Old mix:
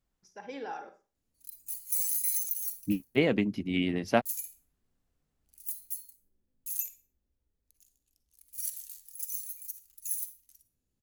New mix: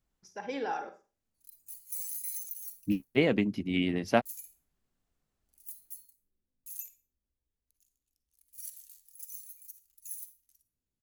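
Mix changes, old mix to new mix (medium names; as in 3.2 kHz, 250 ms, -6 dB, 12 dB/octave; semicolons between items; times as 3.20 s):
first voice +5.0 dB; background -8.0 dB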